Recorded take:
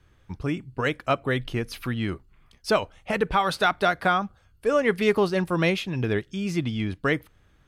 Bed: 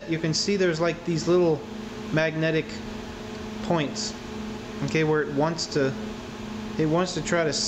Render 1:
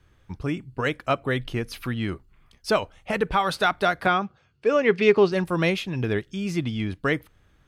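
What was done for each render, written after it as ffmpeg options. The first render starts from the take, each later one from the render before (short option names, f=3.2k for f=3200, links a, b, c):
-filter_complex "[0:a]asettb=1/sr,asplit=3[a][b][c];[a]atrim=end=4.064[d];[b]atrim=start=4.06:end=5.32,asetpts=PTS-STARTPTS,afade=t=in:d=0.004:c=qsin,afade=t=out:st=1.256:d=0.004:c=qsin,highpass=130,equalizer=f=140:t=q:w=4:g=8,equalizer=f=390:t=q:w=4:g=6,equalizer=f=2.5k:t=q:w=4:g=6,lowpass=f=6.3k:w=0.5412,lowpass=f=6.3k:w=1.3066[e];[c]atrim=start=5.316[f];[d][e]acrossfade=d=0.004:c1=hsin:c2=qsin[g];[g][f]acrossfade=d=0.004:c1=qsin:c2=hsin"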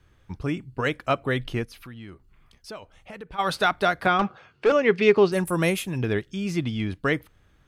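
-filter_complex "[0:a]asplit=3[a][b][c];[a]afade=t=out:st=1.64:d=0.02[d];[b]acompressor=threshold=-49dB:ratio=2:attack=3.2:release=140:knee=1:detection=peak,afade=t=in:st=1.64:d=0.02,afade=t=out:st=3.38:d=0.02[e];[c]afade=t=in:st=3.38:d=0.02[f];[d][e][f]amix=inputs=3:normalize=0,asettb=1/sr,asplit=3[g][h][i];[g]atrim=end=4.194[j];[h]atrim=start=4.19:end=4.72,asetpts=PTS-STARTPTS,afade=t=in:d=0.004:c=qsin,afade=t=out:st=0.526:d=0.004:c=qsin,asplit=2[k][l];[l]highpass=f=720:p=1,volume=23dB,asoftclip=type=tanh:threshold=-11dB[m];[k][m]amix=inputs=2:normalize=0,lowpass=f=1.6k:p=1,volume=-6dB[n];[i]atrim=start=4.716[o];[j][n]acrossfade=d=0.004:c1=hsin:c2=qsin[p];[p][o]acrossfade=d=0.004:c1=qsin:c2=hsin,asettb=1/sr,asplit=3[q][r][s];[q]atrim=end=5.324[t];[r]atrim=start=5.32:end=5.98,asetpts=PTS-STARTPTS,afade=t=in:d=0.004:c=qsin,afade=t=out:st=0.656:d=0.004:c=qsin,highshelf=f=6.7k:t=q:w=1.5:g=13[u];[s]atrim=start=5.976[v];[t][u]acrossfade=d=0.004:c1=hsin:c2=qsin[w];[w][v]acrossfade=d=0.004:c1=qsin:c2=hsin"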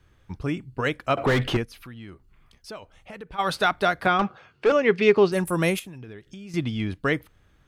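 -filter_complex "[0:a]asettb=1/sr,asplit=3[a][b][c];[a]atrim=end=1.174[d];[b]atrim=start=1.17:end=1.57,asetpts=PTS-STARTPTS,afade=t=in:d=0.004:c=qsin,afade=t=out:st=0.396:d=0.004:c=qsin,asplit=2[e][f];[f]highpass=f=720:p=1,volume=33dB,asoftclip=type=tanh:threshold=-12.5dB[g];[e][g]amix=inputs=2:normalize=0,lowpass=f=1.3k:p=1,volume=-6dB[h];[c]atrim=start=1.566[i];[d][h]acrossfade=d=0.004:c1=hsin:c2=qsin[j];[j][i]acrossfade=d=0.004:c1=qsin:c2=hsin,asettb=1/sr,asplit=3[k][l][m];[k]atrim=end=5.794[n];[l]atrim=start=5.79:end=6.54,asetpts=PTS-STARTPTS,afade=t=in:d=0.004:c=qsin,afade=t=out:st=0.746:d=0.004:c=qsin,acompressor=threshold=-37dB:ratio=10:attack=3.2:release=140:knee=1:detection=peak[o];[m]atrim=start=6.536[p];[n][o]acrossfade=d=0.004:c1=hsin:c2=qsin[q];[q][p]acrossfade=d=0.004:c1=qsin:c2=hsin"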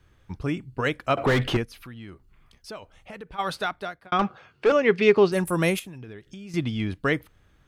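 -filter_complex "[0:a]asplit=2[a][b];[a]atrim=end=4.12,asetpts=PTS-STARTPTS,afade=t=out:st=3.15:d=0.97[c];[b]atrim=start=4.12,asetpts=PTS-STARTPTS,afade=t=in:d=0.004:c=hsin[d];[c][d]concat=n=2:v=0:a=1"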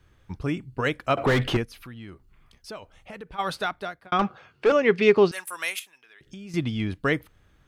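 -filter_complex "[0:a]asettb=1/sr,asplit=3[a][b][c];[a]atrim=end=5.314[d];[b]atrim=start=5.31:end=6.21,asetpts=PTS-STARTPTS,afade=t=in:d=0.004:c=qsin,afade=t=out:st=0.896:d=0.004:c=qsin,highpass=1.4k[e];[c]atrim=start=6.206[f];[d][e]acrossfade=d=0.004:c1=hsin:c2=qsin[g];[g][f]acrossfade=d=0.004:c1=qsin:c2=hsin"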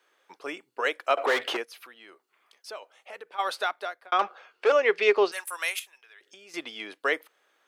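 -af "highpass=f=440:w=0.5412,highpass=f=440:w=1.3066"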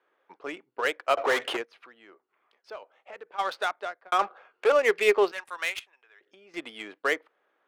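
-af "adynamicsmooth=sensitivity=5:basefreq=1.9k"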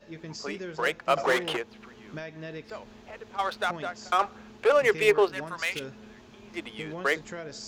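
-filter_complex "[1:a]volume=-15.5dB[a];[0:a][a]amix=inputs=2:normalize=0"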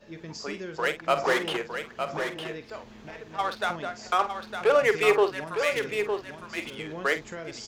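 -filter_complex "[0:a]asplit=2[a][b];[b]adelay=48,volume=-11.5dB[c];[a][c]amix=inputs=2:normalize=0,aecho=1:1:908:0.447"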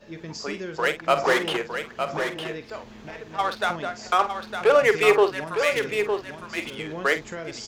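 -af "volume=3.5dB"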